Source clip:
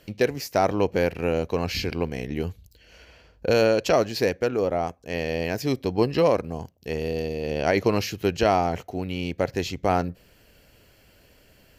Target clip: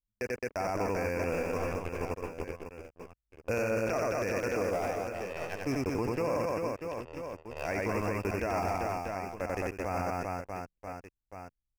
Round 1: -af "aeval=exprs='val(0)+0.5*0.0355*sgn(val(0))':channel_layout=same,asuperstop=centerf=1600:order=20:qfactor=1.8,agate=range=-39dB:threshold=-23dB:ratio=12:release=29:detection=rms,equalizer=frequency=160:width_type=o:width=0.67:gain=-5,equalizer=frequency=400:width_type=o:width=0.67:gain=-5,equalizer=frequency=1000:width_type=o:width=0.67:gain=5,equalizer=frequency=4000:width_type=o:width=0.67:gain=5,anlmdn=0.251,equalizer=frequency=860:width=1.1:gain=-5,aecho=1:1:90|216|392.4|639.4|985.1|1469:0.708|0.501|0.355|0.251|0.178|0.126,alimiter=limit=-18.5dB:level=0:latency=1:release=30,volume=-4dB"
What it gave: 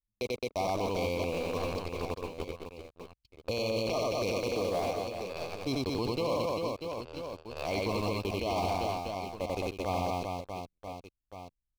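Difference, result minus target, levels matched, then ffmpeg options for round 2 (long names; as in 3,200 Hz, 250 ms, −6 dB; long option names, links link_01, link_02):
4,000 Hz band +10.5 dB
-af "aeval=exprs='val(0)+0.5*0.0355*sgn(val(0))':channel_layout=same,asuperstop=centerf=3600:order=20:qfactor=1.8,agate=range=-39dB:threshold=-23dB:ratio=12:release=29:detection=rms,equalizer=frequency=160:width_type=o:width=0.67:gain=-5,equalizer=frequency=400:width_type=o:width=0.67:gain=-5,equalizer=frequency=1000:width_type=o:width=0.67:gain=5,equalizer=frequency=4000:width_type=o:width=0.67:gain=5,anlmdn=0.251,equalizer=frequency=860:width=1.1:gain=-5,aecho=1:1:90|216|392.4|639.4|985.1|1469:0.708|0.501|0.355|0.251|0.178|0.126,alimiter=limit=-18.5dB:level=0:latency=1:release=30,volume=-4dB"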